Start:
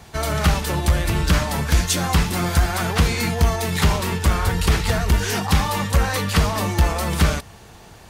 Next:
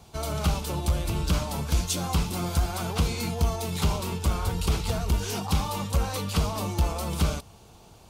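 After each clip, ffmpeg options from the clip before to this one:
ffmpeg -i in.wav -af "equalizer=frequency=1800:width_type=o:width=0.45:gain=-14,volume=-7dB" out.wav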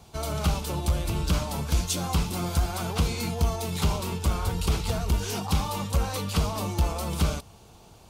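ffmpeg -i in.wav -af anull out.wav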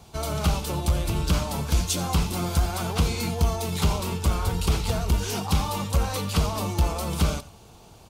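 ffmpeg -i in.wav -af "aecho=1:1:89:0.141,volume=2dB" out.wav

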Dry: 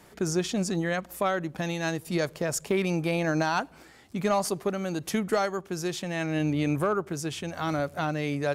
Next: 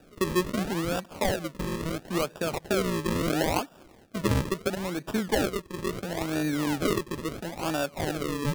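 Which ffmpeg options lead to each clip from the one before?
ffmpeg -i in.wav -af "highpass=frequency=170:width=0.5412,highpass=frequency=170:width=1.3066,bandreject=frequency=7500:width=7.1,acrusher=samples=41:mix=1:aa=0.000001:lfo=1:lforange=41:lforate=0.74" out.wav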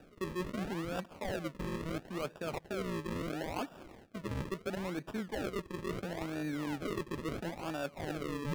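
ffmpeg -i in.wav -af "equalizer=frequency=2200:width=1.5:gain=2,areverse,acompressor=threshold=-35dB:ratio=10,areverse,highshelf=frequency=4100:gain=-7.5,volume=1dB" out.wav

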